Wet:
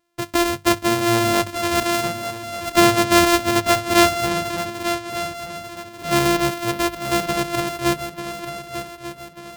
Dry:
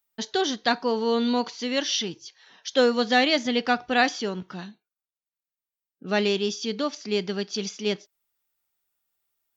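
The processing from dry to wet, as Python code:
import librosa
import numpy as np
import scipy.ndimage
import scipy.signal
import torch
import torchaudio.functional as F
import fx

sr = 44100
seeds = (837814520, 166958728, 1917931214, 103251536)

y = np.r_[np.sort(x[:len(x) // 128 * 128].reshape(-1, 128), axis=1).ravel(), x[len(x) // 128 * 128:]]
y = fx.hum_notches(y, sr, base_hz=50, count=3)
y = fx.echo_swing(y, sr, ms=1190, ratio=3, feedback_pct=40, wet_db=-10.5)
y = y * 10.0 ** (5.5 / 20.0)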